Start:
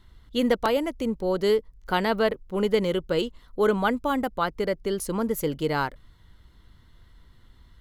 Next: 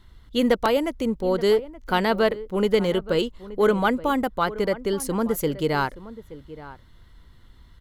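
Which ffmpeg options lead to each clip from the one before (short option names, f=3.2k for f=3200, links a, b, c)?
-filter_complex "[0:a]asplit=2[a][b];[b]aeval=exprs='clip(val(0),-1,0.141)':c=same,volume=-9.5dB[c];[a][c]amix=inputs=2:normalize=0,asplit=2[d][e];[e]adelay=874.6,volume=-16dB,highshelf=f=4k:g=-19.7[f];[d][f]amix=inputs=2:normalize=0"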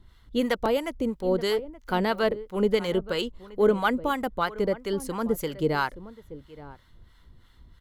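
-filter_complex "[0:a]acrossover=split=740[a][b];[a]aeval=exprs='val(0)*(1-0.7/2+0.7/2*cos(2*PI*3*n/s))':c=same[c];[b]aeval=exprs='val(0)*(1-0.7/2-0.7/2*cos(2*PI*3*n/s))':c=same[d];[c][d]amix=inputs=2:normalize=0"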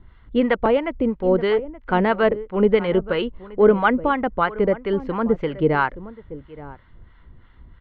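-af "lowpass=f=2.6k:w=0.5412,lowpass=f=2.6k:w=1.3066,volume=6.5dB"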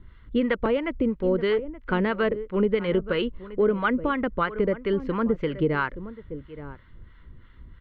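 -af "equalizer=f=770:w=2.8:g=-11.5,acompressor=threshold=-20dB:ratio=3"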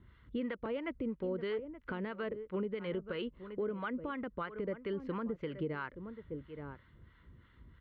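-af "highpass=65,alimiter=limit=-22dB:level=0:latency=1:release=320,volume=-6.5dB"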